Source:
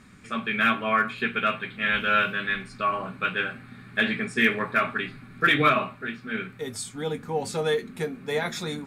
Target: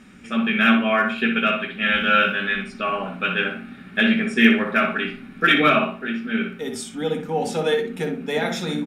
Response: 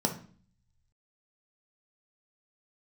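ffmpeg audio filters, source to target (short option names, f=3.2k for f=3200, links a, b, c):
-filter_complex "[0:a]equalizer=f=2.8k:t=o:w=0.36:g=8.5,asplit=2[a][b];[b]adelay=61,lowpass=f=2.6k:p=1,volume=-5dB,asplit=2[c][d];[d]adelay=61,lowpass=f=2.6k:p=1,volume=0.31,asplit=2[e][f];[f]adelay=61,lowpass=f=2.6k:p=1,volume=0.31,asplit=2[g][h];[h]adelay=61,lowpass=f=2.6k:p=1,volume=0.31[i];[a][c][e][g][i]amix=inputs=5:normalize=0,asplit=2[j][k];[1:a]atrim=start_sample=2205,atrim=end_sample=3087[l];[k][l]afir=irnorm=-1:irlink=0,volume=-13.5dB[m];[j][m]amix=inputs=2:normalize=0"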